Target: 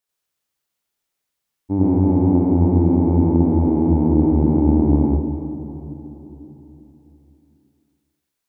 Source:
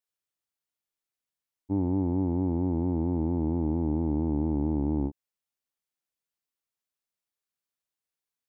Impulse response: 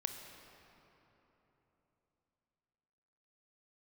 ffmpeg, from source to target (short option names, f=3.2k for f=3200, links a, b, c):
-filter_complex "[0:a]asplit=2[a][b];[1:a]atrim=start_sample=2205,adelay=93[c];[b][c]afir=irnorm=-1:irlink=0,volume=3dB[d];[a][d]amix=inputs=2:normalize=0,volume=6.5dB"